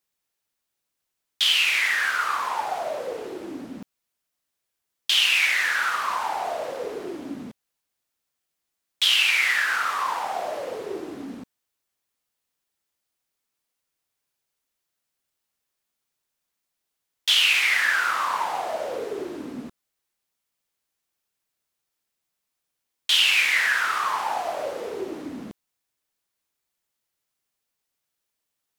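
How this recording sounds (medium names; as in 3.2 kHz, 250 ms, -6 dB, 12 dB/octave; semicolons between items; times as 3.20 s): noise floor -82 dBFS; spectral tilt -2.0 dB/octave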